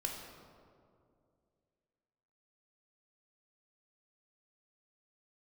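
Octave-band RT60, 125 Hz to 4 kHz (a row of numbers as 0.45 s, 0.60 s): 2.7 s, 2.7 s, 2.6 s, 2.1 s, 1.4 s, 1.1 s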